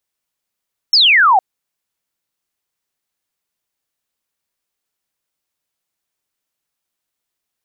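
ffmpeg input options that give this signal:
-f lavfi -i "aevalsrc='0.447*clip(t/0.002,0,1)*clip((0.46-t)/0.002,0,1)*sin(2*PI*5500*0.46/log(720/5500)*(exp(log(720/5500)*t/0.46)-1))':d=0.46:s=44100"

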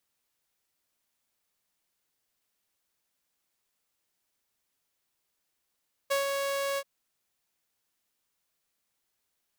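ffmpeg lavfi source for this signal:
-f lavfi -i "aevalsrc='0.0841*(2*mod(555*t,1)-1)':d=0.732:s=44100,afade=t=in:d=0.016,afade=t=out:st=0.016:d=0.134:silence=0.596,afade=t=out:st=0.68:d=0.052"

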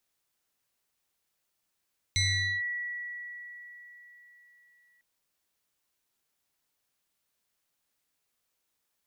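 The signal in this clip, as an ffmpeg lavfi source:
-f lavfi -i "aevalsrc='0.075*pow(10,-3*t/4.09)*sin(2*PI*1940*t+2.2*clip(1-t/0.46,0,1)*sin(2*PI*1.05*1940*t))':d=2.85:s=44100"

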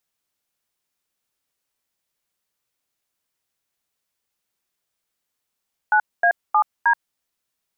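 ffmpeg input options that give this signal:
-f lavfi -i "aevalsrc='0.168*clip(min(mod(t,0.312),0.079-mod(t,0.312))/0.002,0,1)*(eq(floor(t/0.312),0)*(sin(2*PI*852*mod(t,0.312))+sin(2*PI*1477*mod(t,0.312)))+eq(floor(t/0.312),1)*(sin(2*PI*697*mod(t,0.312))+sin(2*PI*1633*mod(t,0.312)))+eq(floor(t/0.312),2)*(sin(2*PI*852*mod(t,0.312))+sin(2*PI*1209*mod(t,0.312)))+eq(floor(t/0.312),3)*(sin(2*PI*941*mod(t,0.312))+sin(2*PI*1633*mod(t,0.312))))':d=1.248:s=44100"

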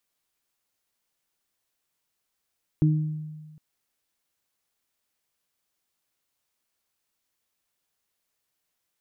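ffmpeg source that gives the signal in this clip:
-f lavfi -i "aevalsrc='0.158*pow(10,-3*t/1.46)*sin(2*PI*154*t)+0.0891*pow(10,-3*t/0.61)*sin(2*PI*308*t)':d=0.76:s=44100"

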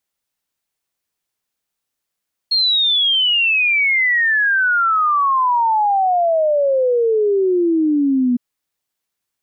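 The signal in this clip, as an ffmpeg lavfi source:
-f lavfi -i "aevalsrc='0.237*clip(min(t,5.86-t)/0.01,0,1)*sin(2*PI*4300*5.86/log(240/4300)*(exp(log(240/4300)*t/5.86)-1))':d=5.86:s=44100"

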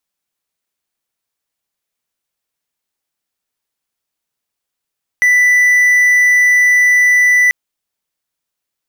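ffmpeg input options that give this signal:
-f lavfi -i "aevalsrc='0.562*(1-4*abs(mod(1980*t+0.25,1)-0.5))':d=2.29:s=44100"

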